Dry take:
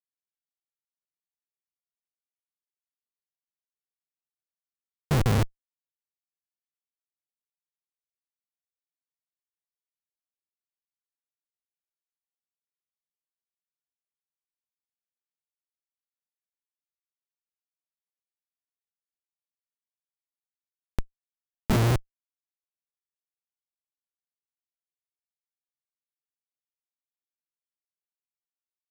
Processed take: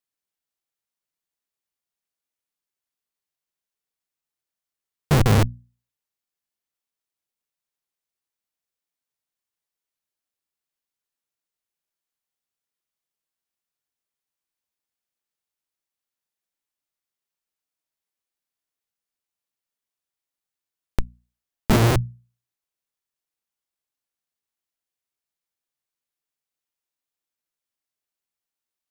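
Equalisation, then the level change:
mains-hum notches 60/120/180/240 Hz
+6.5 dB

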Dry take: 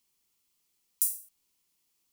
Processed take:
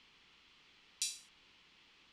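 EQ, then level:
low-pass with resonance 3,300 Hz, resonance Q 1.8
high-frequency loss of the air 69 metres
parametric band 1,600 Hz +5.5 dB 0.97 octaves
+16.0 dB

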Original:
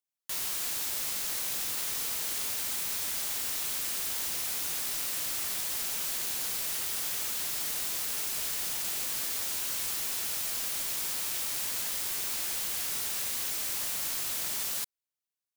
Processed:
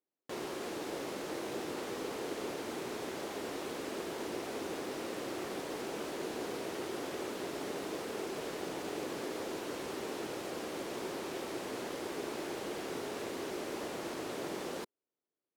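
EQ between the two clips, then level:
resonant band-pass 370 Hz, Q 2.2
+17.0 dB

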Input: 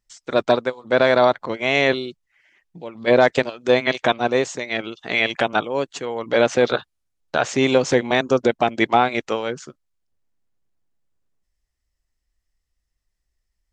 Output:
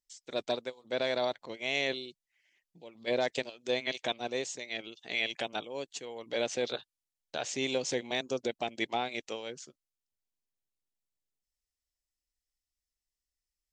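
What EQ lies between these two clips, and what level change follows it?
tilt shelving filter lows −3.5 dB
low-shelf EQ 280 Hz −7.5 dB
parametric band 1,300 Hz −13.5 dB 1.3 octaves
−9.0 dB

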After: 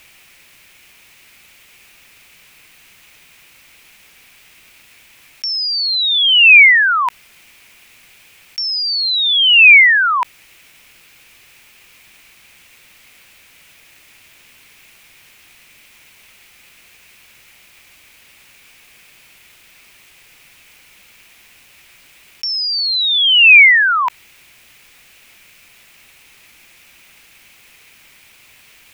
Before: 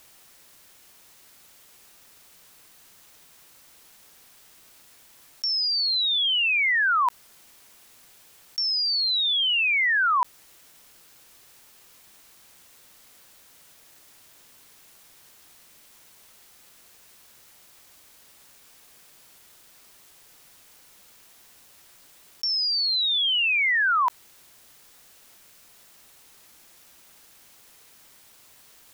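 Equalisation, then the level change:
low-shelf EQ 210 Hz +7 dB
parametric band 2,400 Hz +15 dB 0.85 octaves
+3.0 dB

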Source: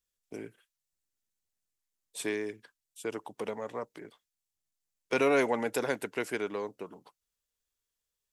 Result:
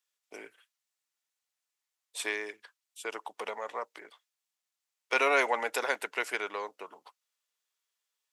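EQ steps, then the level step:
high-pass filter 810 Hz 12 dB per octave
high-shelf EQ 6,200 Hz −8.5 dB
notch filter 1,600 Hz, Q 24
+6.5 dB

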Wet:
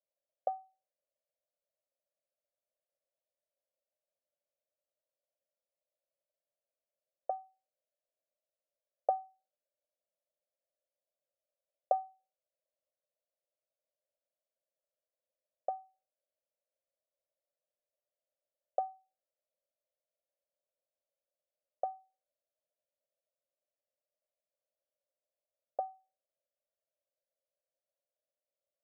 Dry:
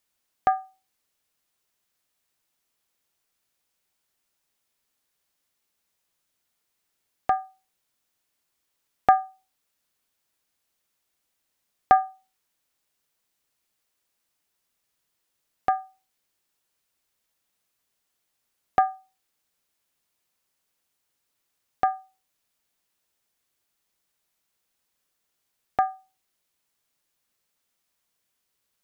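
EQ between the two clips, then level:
flat-topped band-pass 580 Hz, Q 4.7
+2.0 dB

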